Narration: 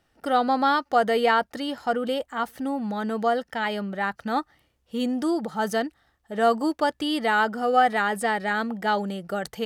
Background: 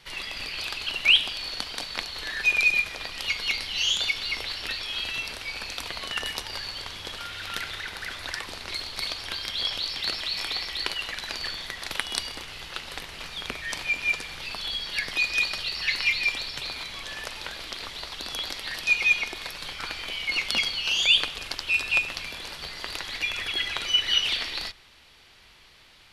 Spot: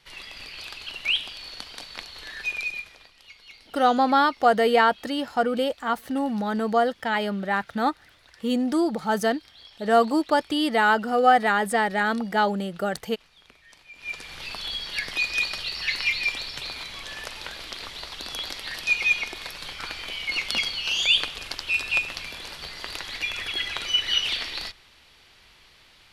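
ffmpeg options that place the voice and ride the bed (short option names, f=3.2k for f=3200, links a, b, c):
-filter_complex "[0:a]adelay=3500,volume=2dB[a];[1:a]volume=14dB,afade=t=out:st=2.4:d=0.74:silence=0.188365,afade=t=in:st=13.93:d=0.49:silence=0.1[b];[a][b]amix=inputs=2:normalize=0"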